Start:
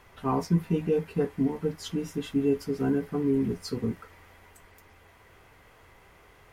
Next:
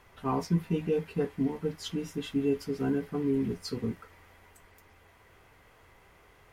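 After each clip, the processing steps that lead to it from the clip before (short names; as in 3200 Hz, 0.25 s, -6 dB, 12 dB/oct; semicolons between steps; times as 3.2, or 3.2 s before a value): dynamic EQ 3300 Hz, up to +4 dB, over -49 dBFS, Q 0.89; gain -3 dB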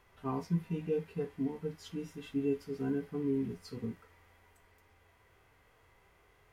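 harmonic-percussive split percussive -9 dB; gain -4 dB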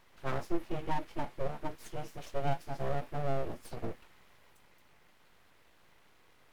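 full-wave rectifier; gain +3.5 dB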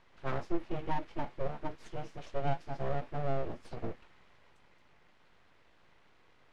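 air absorption 98 m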